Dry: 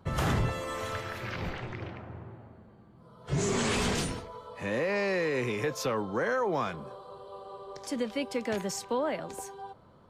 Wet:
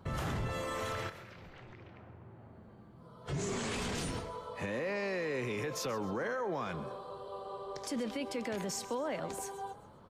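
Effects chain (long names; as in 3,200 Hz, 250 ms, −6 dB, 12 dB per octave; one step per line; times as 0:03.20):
brickwall limiter −29.5 dBFS, peak gain reduction 10.5 dB
0:01.09–0:03.26: downward compressor 12 to 1, threshold −50 dBFS, peak gain reduction 16 dB
echo with shifted repeats 132 ms, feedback 41%, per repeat +38 Hz, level −16.5 dB
level +1 dB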